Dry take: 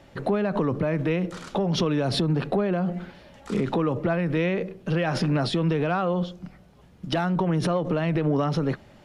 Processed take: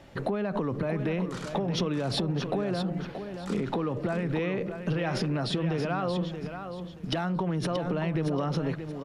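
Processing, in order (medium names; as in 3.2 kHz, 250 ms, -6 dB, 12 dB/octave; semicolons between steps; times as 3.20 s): compression, threshold -26 dBFS, peak gain reduction 7 dB; on a send: feedback delay 629 ms, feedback 26%, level -8.5 dB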